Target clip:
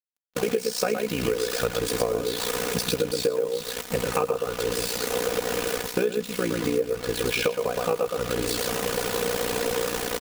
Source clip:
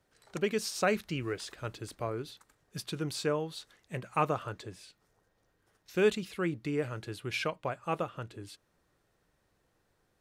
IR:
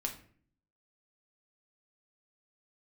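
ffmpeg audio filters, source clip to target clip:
-filter_complex "[0:a]aeval=exprs='val(0)+0.5*0.0119*sgn(val(0))':c=same,highpass=f=83:w=0.5412,highpass=f=83:w=1.3066,equalizer=f=470:w=5.2:g=14.5,bandreject=f=2000:w=13,asplit=2[s0][s1];[s1]aecho=0:1:116:0.562[s2];[s0][s2]amix=inputs=2:normalize=0,dynaudnorm=f=370:g=3:m=4.22,acrusher=bits=4:mix=0:aa=0.000001,tremolo=f=60:d=0.857,aecho=1:1:4.1:0.46,agate=range=0.0224:threshold=0.0316:ratio=3:detection=peak,acompressor=threshold=0.0501:ratio=12,volume=1.78"

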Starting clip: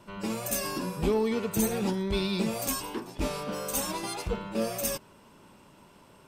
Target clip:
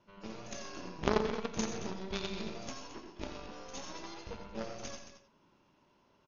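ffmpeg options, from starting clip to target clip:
-filter_complex "[0:a]bandreject=f=48.15:t=h:w=4,bandreject=f=96.3:t=h:w=4,bandreject=f=144.45:t=h:w=4,bandreject=f=192.6:t=h:w=4,bandreject=f=240.75:t=h:w=4,asplit=2[s0][s1];[s1]aecho=0:1:84:0.422[s2];[s0][s2]amix=inputs=2:normalize=0,aeval=exprs='0.2*(cos(1*acos(clip(val(0)/0.2,-1,1)))-cos(1*PI/2))+0.0891*(cos(3*acos(clip(val(0)/0.2,-1,1)))-cos(3*PI/2))+0.00794*(cos(4*acos(clip(val(0)/0.2,-1,1)))-cos(4*PI/2))+0.0178*(cos(5*acos(clip(val(0)/0.2,-1,1)))-cos(5*PI/2))+0.00794*(cos(6*acos(clip(val(0)/0.2,-1,1)))-cos(6*PI/2))':c=same,asplit=2[s3][s4];[s4]aecho=0:1:87|101|126|222:0.266|0.133|0.251|0.251[s5];[s3][s5]amix=inputs=2:normalize=0,volume=1.68" -ar 48000 -c:a ac3 -b:a 48k

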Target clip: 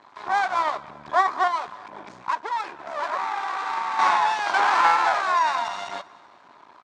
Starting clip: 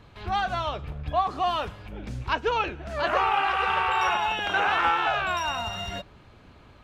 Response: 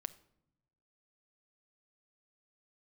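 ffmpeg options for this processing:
-filter_complex "[0:a]highshelf=f=3700:g=-10.5,asettb=1/sr,asplit=3[s0][s1][s2];[s0]atrim=end=1.474[s3];[s1]atrim=start=1.47:end=3.99,asetpts=PTS-STARTPTS,afade=t=in:d=0.004:c=qsin,afade=t=out:st=2.516:d=0.004:c=qsin,acompressor=threshold=0.0316:ratio=6[s4];[s2]atrim=start=3.986[s5];[s3][s4]acrossfade=d=0.004:c1=hsin:c2=qsin[s6];[s6][s5]acrossfade=d=0.004:c1=qsin:c2=hsin,aeval=exprs='max(val(0),0)':c=same,highpass=470,equalizer=f=480:t=q:w=4:g=-8,equalizer=f=1000:t=q:w=4:g=10,equalizer=f=2800:t=q:w=4:g=-8,lowpass=f=8300:w=0.5412,lowpass=f=8300:w=1.3066,aecho=1:1:193|386|579|772:0.0708|0.0396|0.0222|0.0124,volume=2.66"

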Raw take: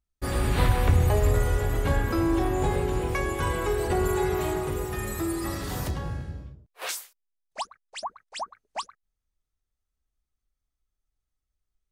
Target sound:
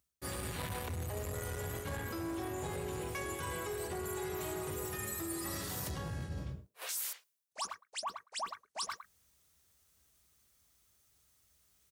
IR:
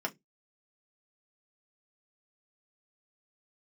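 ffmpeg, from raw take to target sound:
-filter_complex "[0:a]asoftclip=type=tanh:threshold=0.0944,highpass=f=70:w=0.5412,highpass=f=70:w=1.3066,highshelf=f=4300:g=10.5,asplit=2[s0][s1];[1:a]atrim=start_sample=2205[s2];[s1][s2]afir=irnorm=-1:irlink=0,volume=0.1[s3];[s0][s3]amix=inputs=2:normalize=0,acontrast=90,asplit=2[s4][s5];[s5]adelay=110,highpass=300,lowpass=3400,asoftclip=type=hard:threshold=0.0316,volume=0.158[s6];[s4][s6]amix=inputs=2:normalize=0,areverse,acompressor=threshold=0.00562:ratio=8,areverse,volume=2.11"

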